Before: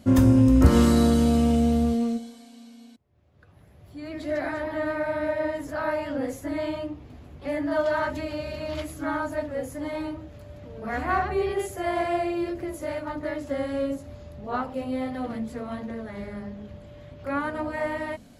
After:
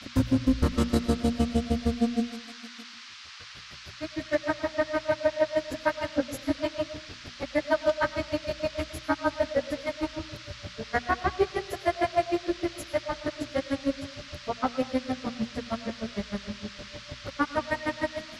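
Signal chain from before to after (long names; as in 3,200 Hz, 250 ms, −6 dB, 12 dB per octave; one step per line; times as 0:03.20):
granular cloud 77 ms, grains 6.5 per second, spray 35 ms, pitch spread up and down by 0 semitones
brickwall limiter −20 dBFS, peak gain reduction 10 dB
noise in a band 1,100–5,300 Hz −53 dBFS
mains-hum notches 60/120/180/240 Hz
on a send: convolution reverb RT60 0.75 s, pre-delay 70 ms, DRR 14 dB
on the sum: level +7 dB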